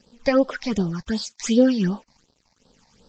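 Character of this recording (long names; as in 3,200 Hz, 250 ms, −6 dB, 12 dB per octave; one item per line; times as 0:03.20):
tremolo triangle 0.73 Hz, depth 50%
a quantiser's noise floor 10 bits, dither none
phaser sweep stages 8, 2.7 Hz, lowest notch 390–2,200 Hz
Ogg Vorbis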